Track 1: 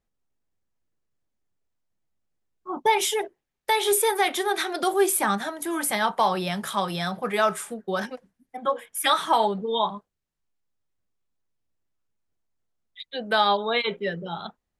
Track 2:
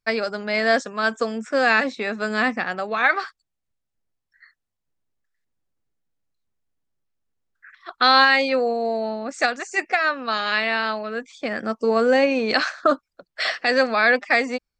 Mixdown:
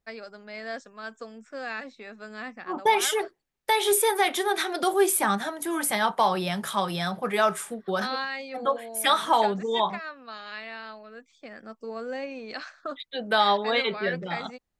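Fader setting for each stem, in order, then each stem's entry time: −0.5, −16.5 decibels; 0.00, 0.00 seconds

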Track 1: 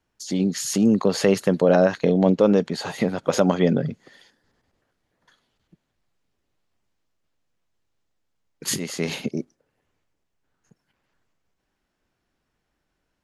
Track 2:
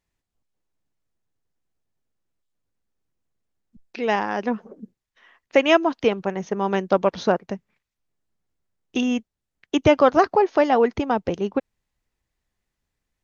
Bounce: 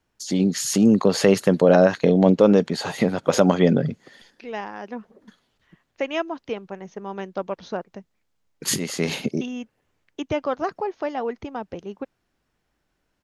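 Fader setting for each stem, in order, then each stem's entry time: +2.0, −9.5 decibels; 0.00, 0.45 seconds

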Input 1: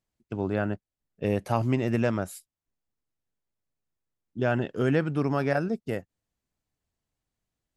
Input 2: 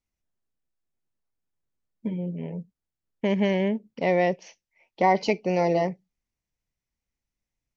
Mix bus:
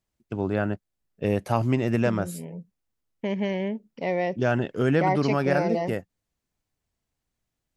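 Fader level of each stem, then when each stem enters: +2.0, −4.0 decibels; 0.00, 0.00 seconds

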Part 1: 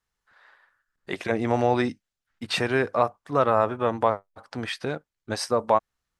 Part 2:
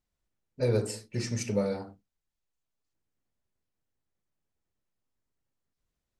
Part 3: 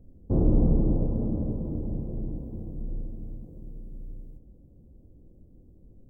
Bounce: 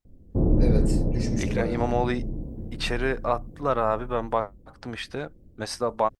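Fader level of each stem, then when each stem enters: −3.0, −2.0, +1.0 decibels; 0.30, 0.00, 0.05 seconds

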